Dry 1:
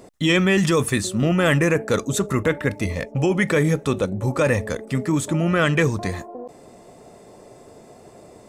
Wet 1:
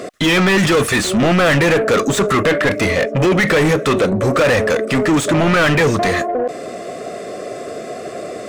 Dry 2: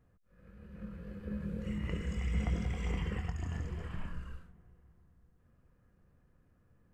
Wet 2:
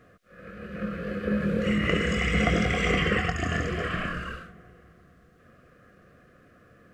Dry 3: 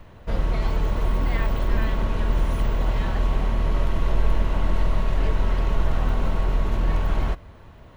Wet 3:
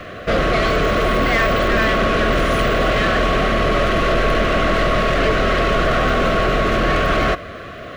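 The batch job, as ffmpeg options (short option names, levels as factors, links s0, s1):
-filter_complex "[0:a]asuperstop=centerf=900:order=8:qfactor=2.7,asplit=2[s0][s1];[s1]highpass=f=720:p=1,volume=31.6,asoftclip=type=tanh:threshold=0.501[s2];[s0][s2]amix=inputs=2:normalize=0,lowpass=f=2500:p=1,volume=0.501"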